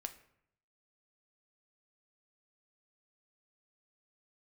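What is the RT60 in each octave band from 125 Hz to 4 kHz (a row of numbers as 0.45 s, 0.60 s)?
0.95 s, 0.80 s, 0.75 s, 0.70 s, 0.65 s, 0.45 s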